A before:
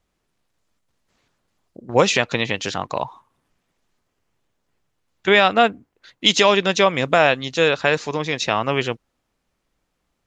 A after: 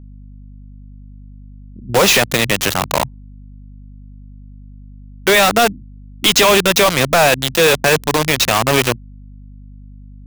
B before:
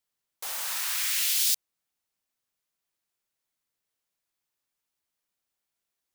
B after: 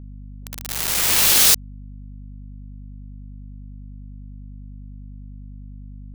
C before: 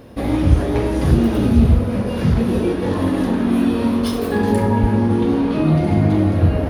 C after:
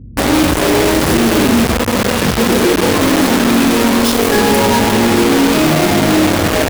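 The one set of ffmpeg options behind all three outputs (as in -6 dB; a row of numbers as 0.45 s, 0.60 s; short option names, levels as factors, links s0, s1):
-filter_complex "[0:a]acrossover=split=230[s0][s1];[s0]acompressor=threshold=0.0355:ratio=6[s2];[s1]acrusher=bits=3:mix=0:aa=0.000001[s3];[s2][s3]amix=inputs=2:normalize=0,aeval=exprs='val(0)+0.00501*(sin(2*PI*50*n/s)+sin(2*PI*2*50*n/s)/2+sin(2*PI*3*50*n/s)/3+sin(2*PI*4*50*n/s)/4+sin(2*PI*5*50*n/s)/5)':c=same,apsyclip=7.08,volume=0.447"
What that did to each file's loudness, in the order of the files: +5.0 LU, +10.5 LU, +5.5 LU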